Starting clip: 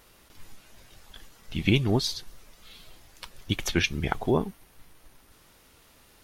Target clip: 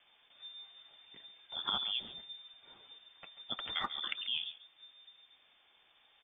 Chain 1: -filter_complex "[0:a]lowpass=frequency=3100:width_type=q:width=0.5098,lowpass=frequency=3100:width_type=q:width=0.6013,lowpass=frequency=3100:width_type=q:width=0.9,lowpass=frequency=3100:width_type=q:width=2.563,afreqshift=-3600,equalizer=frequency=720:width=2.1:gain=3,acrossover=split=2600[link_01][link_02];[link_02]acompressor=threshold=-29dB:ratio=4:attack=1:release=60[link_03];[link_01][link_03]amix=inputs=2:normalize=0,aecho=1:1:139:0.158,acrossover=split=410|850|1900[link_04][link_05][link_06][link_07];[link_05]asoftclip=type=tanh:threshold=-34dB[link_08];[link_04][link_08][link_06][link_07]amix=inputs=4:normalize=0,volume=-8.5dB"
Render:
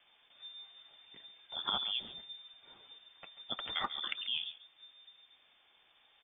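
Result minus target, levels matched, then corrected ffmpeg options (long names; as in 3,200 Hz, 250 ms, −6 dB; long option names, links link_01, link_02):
soft clipping: distortion −7 dB
-filter_complex "[0:a]lowpass=frequency=3100:width_type=q:width=0.5098,lowpass=frequency=3100:width_type=q:width=0.6013,lowpass=frequency=3100:width_type=q:width=0.9,lowpass=frequency=3100:width_type=q:width=2.563,afreqshift=-3600,equalizer=frequency=720:width=2.1:gain=3,acrossover=split=2600[link_01][link_02];[link_02]acompressor=threshold=-29dB:ratio=4:attack=1:release=60[link_03];[link_01][link_03]amix=inputs=2:normalize=0,aecho=1:1:139:0.158,acrossover=split=410|850|1900[link_04][link_05][link_06][link_07];[link_05]asoftclip=type=tanh:threshold=-46dB[link_08];[link_04][link_08][link_06][link_07]amix=inputs=4:normalize=0,volume=-8.5dB"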